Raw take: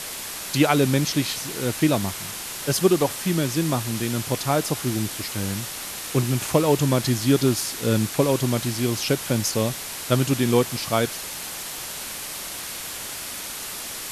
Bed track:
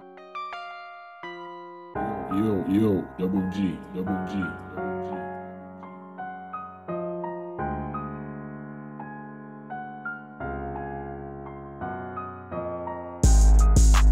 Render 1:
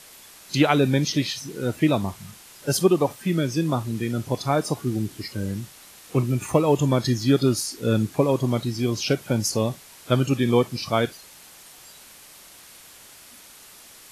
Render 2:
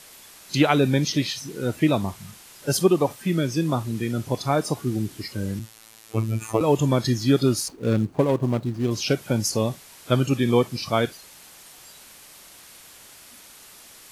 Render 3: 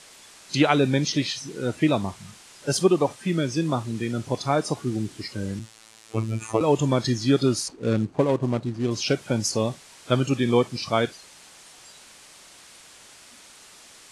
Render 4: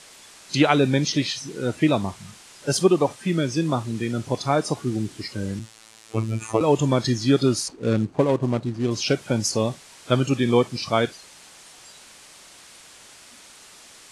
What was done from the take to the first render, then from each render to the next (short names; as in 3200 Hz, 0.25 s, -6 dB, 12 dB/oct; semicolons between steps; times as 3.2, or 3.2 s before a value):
noise print and reduce 14 dB
5.59–6.61 robotiser 111 Hz; 7.68–8.91 median filter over 25 samples
LPF 9400 Hz 24 dB/oct; low shelf 160 Hz -4 dB
gain +1.5 dB